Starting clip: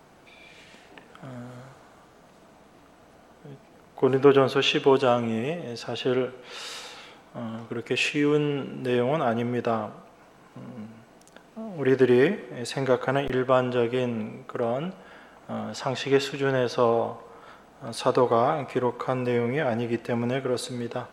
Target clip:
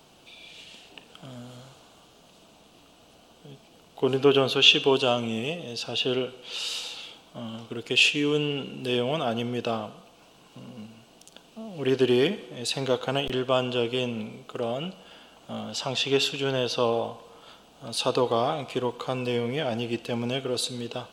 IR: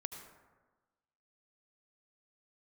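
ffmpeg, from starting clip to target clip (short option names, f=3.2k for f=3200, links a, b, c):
-af "highshelf=f=2.4k:t=q:w=3:g=6.5,volume=-2.5dB"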